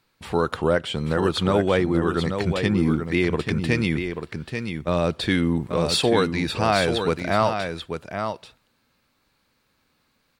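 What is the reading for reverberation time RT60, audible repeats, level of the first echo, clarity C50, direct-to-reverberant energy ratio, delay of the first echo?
none, 1, -7.0 dB, none, none, 0.836 s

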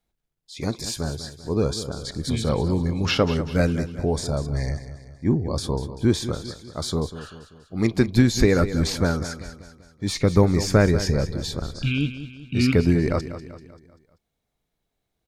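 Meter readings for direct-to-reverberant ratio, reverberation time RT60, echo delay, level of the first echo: none, none, 0.194 s, -12.5 dB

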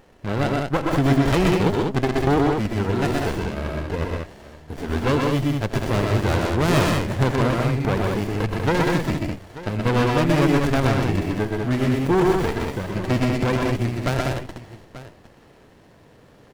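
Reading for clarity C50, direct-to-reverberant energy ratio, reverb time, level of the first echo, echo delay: none, none, none, -14.0 dB, 84 ms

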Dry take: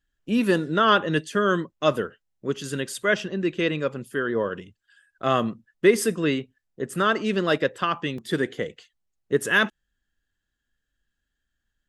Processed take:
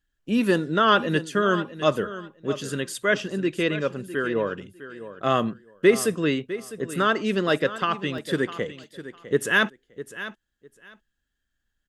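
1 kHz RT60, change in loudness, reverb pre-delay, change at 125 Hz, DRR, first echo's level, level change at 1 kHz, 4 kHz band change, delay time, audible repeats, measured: none, 0.0 dB, none, 0.0 dB, none, -14.0 dB, 0.0 dB, 0.0 dB, 0.654 s, 2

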